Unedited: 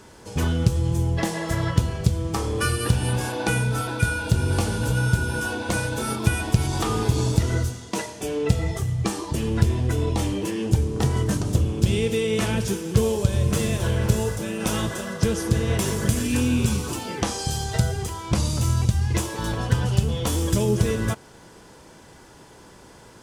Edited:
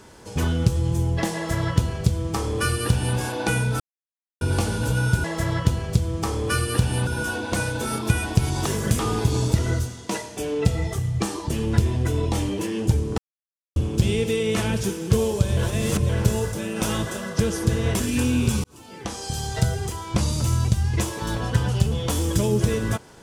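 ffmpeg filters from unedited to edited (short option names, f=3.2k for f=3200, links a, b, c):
-filter_complex "[0:a]asplit=13[a][b][c][d][e][f][g][h][i][j][k][l][m];[a]atrim=end=3.8,asetpts=PTS-STARTPTS,afade=t=out:st=3.796:d=0.004:c=hsin[n];[b]atrim=start=3.8:end=4.41,asetpts=PTS-STARTPTS,volume=0[o];[c]atrim=start=4.41:end=5.242,asetpts=PTS-STARTPTS,afade=t=in:d=0.004:c=hsin[p];[d]atrim=start=1.348:end=3.182[q];[e]atrim=start=5.238:end=6.832[r];[f]atrim=start=15.838:end=16.172[s];[g]atrim=start=6.828:end=11.02,asetpts=PTS-STARTPTS,afade=t=out:st=4.188:d=0.004:c=hsin[t];[h]atrim=start=11.02:end=11.6,asetpts=PTS-STARTPTS,volume=0[u];[i]atrim=start=11.6:end=13.412,asetpts=PTS-STARTPTS,afade=t=in:d=0.004:c=hsin[v];[j]atrim=start=13.408:end=13.932,asetpts=PTS-STARTPTS,areverse[w];[k]atrim=start=13.928:end=15.842[x];[l]atrim=start=16.168:end=16.81,asetpts=PTS-STARTPTS,afade=t=out:st=0.638:d=0.004:c=hsin[y];[m]atrim=start=16.81,asetpts=PTS-STARTPTS,afade=t=in:d=0.92[z];[n][o][p]concat=n=3:v=0:a=1[aa];[aa][q]acrossfade=d=0.004:c1=hsin:c2=hsin[ab];[ab][r]acrossfade=d=0.004:c1=hsin:c2=hsin[ac];[ac][s]acrossfade=d=0.004:c1=hsin:c2=hsin[ad];[t][u][v]concat=n=3:v=0:a=1[ae];[ad][ae]acrossfade=d=0.004:c1=hsin:c2=hsin[af];[af][w]acrossfade=d=0.004:c1=hsin:c2=hsin[ag];[ag][x]acrossfade=d=0.004:c1=hsin:c2=hsin[ah];[y][z]concat=n=2:v=0:a=1[ai];[ah][ai]acrossfade=d=0.004:c1=hsin:c2=hsin"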